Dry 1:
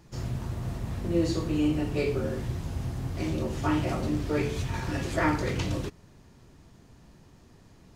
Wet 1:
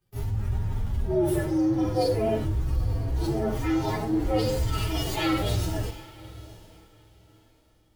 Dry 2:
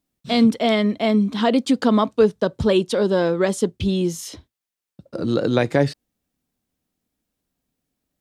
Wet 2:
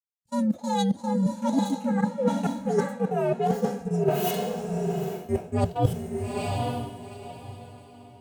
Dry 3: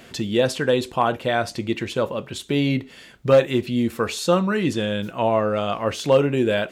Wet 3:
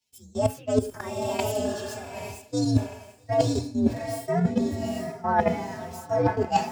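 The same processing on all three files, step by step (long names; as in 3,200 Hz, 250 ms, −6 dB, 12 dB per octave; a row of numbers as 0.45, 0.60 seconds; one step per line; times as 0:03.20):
partials spread apart or drawn together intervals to 129%
output level in coarse steps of 22 dB
parametric band 810 Hz +3.5 dB 0.24 octaves
feedback delay with all-pass diffusion 881 ms, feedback 50%, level −10.5 dB
harmonic and percussive parts rebalanced percussive −14 dB
reversed playback
downward compressor 12 to 1, threshold −33 dBFS
reversed playback
multiband upward and downward expander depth 100%
loudness normalisation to −27 LKFS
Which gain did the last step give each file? +21.0, +11.5, +12.5 decibels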